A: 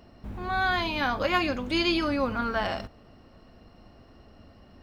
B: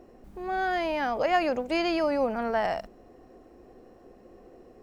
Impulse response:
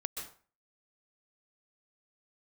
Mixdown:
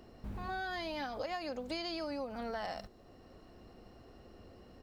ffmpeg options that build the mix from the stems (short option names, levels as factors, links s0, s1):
-filter_complex "[0:a]volume=0.562[s0];[1:a]firequalizer=gain_entry='entry(2700,0);entry(3900,13);entry(6200,6)':delay=0.05:min_phase=1,volume=0.376,asplit=2[s1][s2];[s2]apad=whole_len=212977[s3];[s0][s3]sidechaincompress=threshold=0.00794:ratio=8:attack=16:release=652[s4];[s4][s1]amix=inputs=2:normalize=0,acompressor=threshold=0.0178:ratio=10"